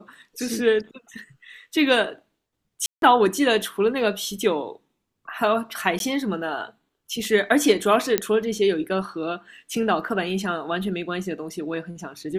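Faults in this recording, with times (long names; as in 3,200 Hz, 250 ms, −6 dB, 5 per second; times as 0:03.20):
0:02.86–0:03.02: drop-out 162 ms
0:05.99–0:06.00: drop-out 12 ms
0:08.18: click −4 dBFS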